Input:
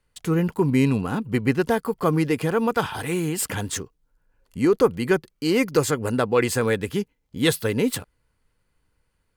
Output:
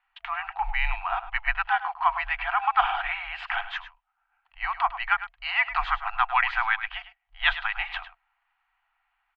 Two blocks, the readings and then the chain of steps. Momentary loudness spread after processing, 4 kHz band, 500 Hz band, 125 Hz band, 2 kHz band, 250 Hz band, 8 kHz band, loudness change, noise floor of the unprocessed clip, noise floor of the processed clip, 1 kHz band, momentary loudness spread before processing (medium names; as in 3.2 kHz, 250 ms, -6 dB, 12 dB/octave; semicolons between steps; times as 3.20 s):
9 LU, -1.5 dB, -22.5 dB, under -20 dB, +5.0 dB, under -40 dB, under -40 dB, -3.5 dB, -71 dBFS, -76 dBFS, +5.5 dB, 8 LU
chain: FFT band-reject 150–790 Hz; mistuned SSB -110 Hz 160–3100 Hz; on a send: delay 103 ms -13.5 dB; on the sum: trim +5.5 dB